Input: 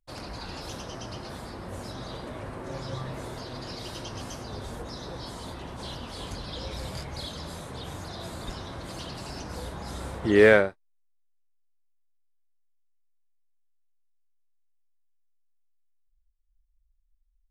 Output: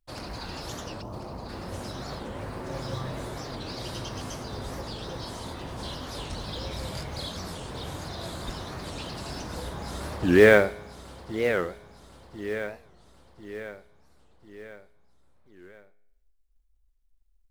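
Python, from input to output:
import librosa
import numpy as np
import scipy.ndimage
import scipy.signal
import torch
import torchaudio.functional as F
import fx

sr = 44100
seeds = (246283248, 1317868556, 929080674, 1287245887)

p1 = fx.steep_lowpass(x, sr, hz=1200.0, slope=48, at=(1.01, 1.48), fade=0.02)
p2 = fx.comb_fb(p1, sr, f0_hz=52.0, decay_s=0.86, harmonics='all', damping=0.0, mix_pct=40)
p3 = fx.quant_float(p2, sr, bits=2)
p4 = p2 + (p3 * 10.0 ** (-7.0 / 20.0))
p5 = fx.echo_feedback(p4, sr, ms=1045, feedback_pct=48, wet_db=-10)
p6 = fx.record_warp(p5, sr, rpm=45.0, depth_cents=250.0)
y = p6 * 10.0 ** (1.5 / 20.0)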